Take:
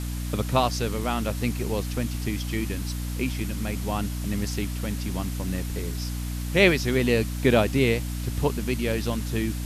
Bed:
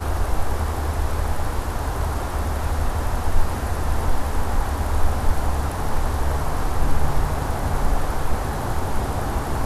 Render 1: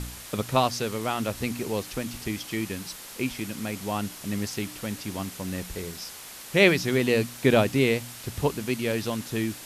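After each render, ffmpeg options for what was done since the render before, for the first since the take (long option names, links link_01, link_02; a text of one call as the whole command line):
ffmpeg -i in.wav -af "bandreject=frequency=60:width_type=h:width=4,bandreject=frequency=120:width_type=h:width=4,bandreject=frequency=180:width_type=h:width=4,bandreject=frequency=240:width_type=h:width=4,bandreject=frequency=300:width_type=h:width=4" out.wav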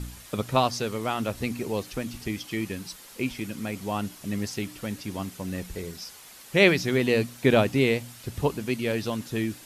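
ffmpeg -i in.wav -af "afftdn=noise_reduction=7:noise_floor=-43" out.wav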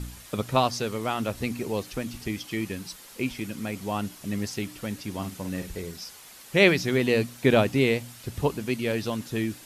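ffmpeg -i in.wav -filter_complex "[0:a]asettb=1/sr,asplit=3[link_01][link_02][link_03];[link_01]atrim=end=5.174[link_04];[link_02]atrim=start=5.17:end=5.7,asetpts=PTS-STARTPTS,afade=type=in:duration=0.004:curve=qsin,afade=type=out:start_time=0.526:duration=0.004:curve=qsin,asplit=2[link_05][link_06];[link_06]adelay=50,volume=-7.5dB[link_07];[link_05][link_07]amix=inputs=2:normalize=0,atrim=end_sample=23373[link_08];[link_03]atrim=start=5.696[link_09];[link_04][link_08]acrossfade=duration=0.004:curve1=hsin:curve2=qsin[link_10];[link_10][link_09]acrossfade=duration=0.004:curve1=qsin:curve2=hsin" out.wav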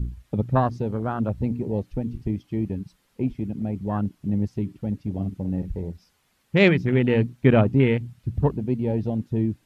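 ffmpeg -i in.wav -af "afwtdn=0.0316,bass=frequency=250:gain=9,treble=frequency=4000:gain=-8" out.wav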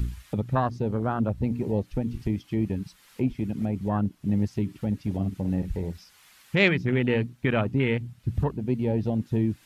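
ffmpeg -i in.wav -filter_complex "[0:a]acrossover=split=990[link_01][link_02];[link_01]alimiter=limit=-15.5dB:level=0:latency=1:release=306[link_03];[link_02]acompressor=mode=upward:threshold=-42dB:ratio=2.5[link_04];[link_03][link_04]amix=inputs=2:normalize=0" out.wav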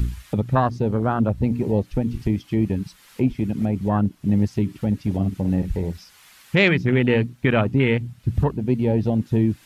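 ffmpeg -i in.wav -af "volume=5.5dB,alimiter=limit=-3dB:level=0:latency=1" out.wav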